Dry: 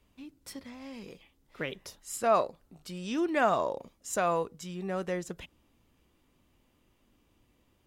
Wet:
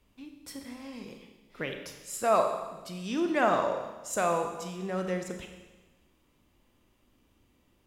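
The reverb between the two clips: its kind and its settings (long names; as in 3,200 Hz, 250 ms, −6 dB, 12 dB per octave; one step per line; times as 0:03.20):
four-comb reverb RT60 1.2 s, combs from 29 ms, DRR 4.5 dB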